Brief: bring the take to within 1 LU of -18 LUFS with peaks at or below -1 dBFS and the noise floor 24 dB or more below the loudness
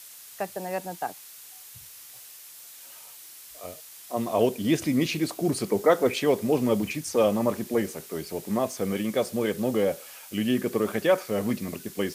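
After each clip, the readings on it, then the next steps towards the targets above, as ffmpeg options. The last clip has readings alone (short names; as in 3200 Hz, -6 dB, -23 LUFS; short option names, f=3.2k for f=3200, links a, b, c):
noise floor -47 dBFS; noise floor target -51 dBFS; loudness -26.5 LUFS; peak -7.5 dBFS; loudness target -18.0 LUFS
-> -af "afftdn=nr=6:nf=-47"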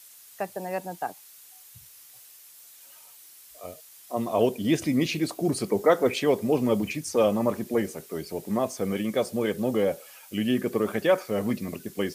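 noise floor -51 dBFS; loudness -27.0 LUFS; peak -7.5 dBFS; loudness target -18.0 LUFS
-> -af "volume=9dB,alimiter=limit=-1dB:level=0:latency=1"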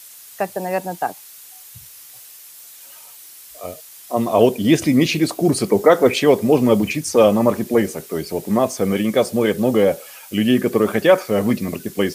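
loudness -18.0 LUFS; peak -1.0 dBFS; noise floor -42 dBFS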